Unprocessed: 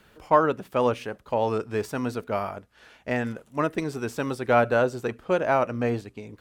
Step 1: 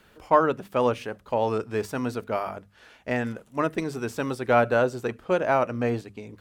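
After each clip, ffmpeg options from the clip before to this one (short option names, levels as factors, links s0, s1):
-af "bandreject=f=50:t=h:w=6,bandreject=f=100:t=h:w=6,bandreject=f=150:t=h:w=6,bandreject=f=200:t=h:w=6"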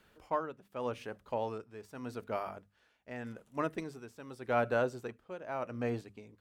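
-af "tremolo=f=0.84:d=0.76,volume=0.376"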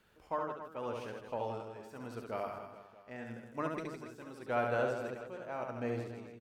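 -af "aecho=1:1:70|161|279.3|433.1|633:0.631|0.398|0.251|0.158|0.1,volume=0.668"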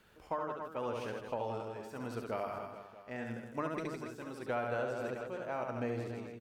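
-af "acompressor=threshold=0.0141:ratio=4,volume=1.58"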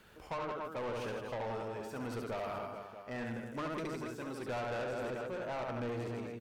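-af "asoftclip=type=tanh:threshold=0.0112,volume=1.68"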